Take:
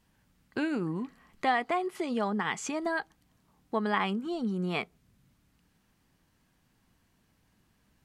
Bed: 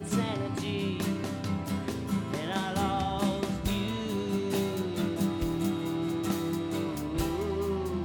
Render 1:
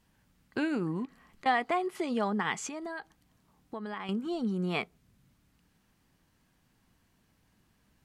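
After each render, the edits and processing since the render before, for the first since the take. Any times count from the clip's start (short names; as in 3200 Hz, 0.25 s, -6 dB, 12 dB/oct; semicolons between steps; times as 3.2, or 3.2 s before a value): 1.05–1.46 compressor, threshold -49 dBFS; 2.66–4.09 compressor 3:1, threshold -38 dBFS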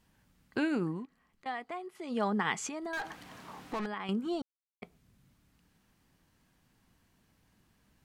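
0.83–2.25 dip -11 dB, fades 0.24 s; 2.93–3.86 overdrive pedal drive 33 dB, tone 2300 Hz, clips at -28.5 dBFS; 4.42–4.82 mute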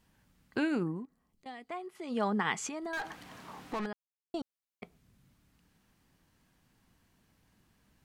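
0.82–1.69 bell 4400 Hz -> 920 Hz -13.5 dB 2 oct; 3.93–4.34 mute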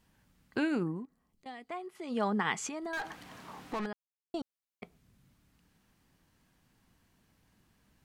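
nothing audible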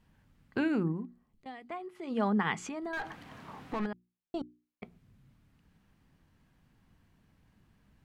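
tone controls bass +6 dB, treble -8 dB; notches 60/120/180/240/300/360 Hz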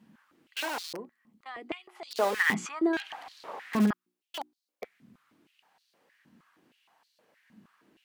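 in parallel at -5.5 dB: wrapped overs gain 29 dB; on the sum: stepped high-pass 6.4 Hz 220–4300 Hz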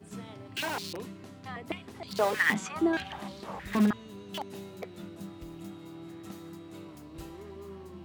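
add bed -14 dB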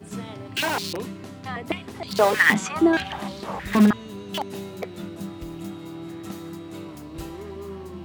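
gain +8.5 dB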